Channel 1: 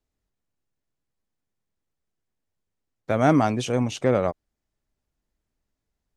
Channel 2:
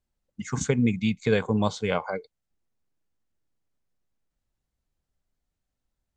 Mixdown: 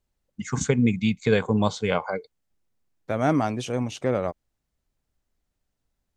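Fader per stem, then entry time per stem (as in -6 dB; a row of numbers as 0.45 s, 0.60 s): -3.5 dB, +2.0 dB; 0.00 s, 0.00 s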